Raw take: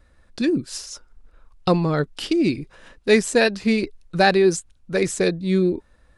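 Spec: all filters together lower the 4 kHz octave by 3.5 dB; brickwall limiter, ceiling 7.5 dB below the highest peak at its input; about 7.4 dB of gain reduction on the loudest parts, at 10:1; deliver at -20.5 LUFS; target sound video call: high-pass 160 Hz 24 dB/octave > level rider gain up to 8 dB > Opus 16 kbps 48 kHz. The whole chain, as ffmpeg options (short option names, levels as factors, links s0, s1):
-af "equalizer=f=4000:t=o:g=-4,acompressor=threshold=0.112:ratio=10,alimiter=limit=0.133:level=0:latency=1,highpass=f=160:w=0.5412,highpass=f=160:w=1.3066,dynaudnorm=m=2.51,volume=2.51" -ar 48000 -c:a libopus -b:a 16k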